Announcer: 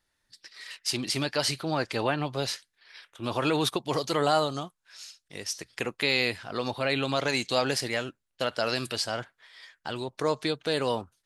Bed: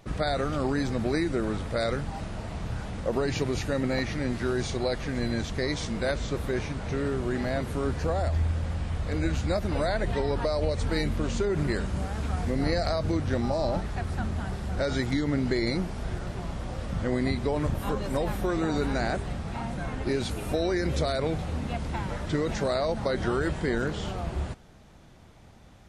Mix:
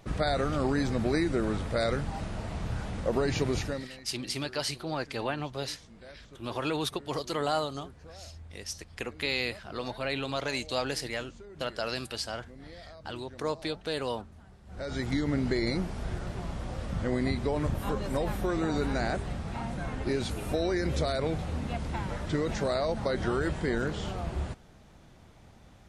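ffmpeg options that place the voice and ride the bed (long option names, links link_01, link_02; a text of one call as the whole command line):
ffmpeg -i stem1.wav -i stem2.wav -filter_complex "[0:a]adelay=3200,volume=-5dB[link_01];[1:a]volume=19dB,afade=type=out:start_time=3.58:duration=0.3:silence=0.0891251,afade=type=in:start_time=14.65:duration=0.51:silence=0.105925[link_02];[link_01][link_02]amix=inputs=2:normalize=0" out.wav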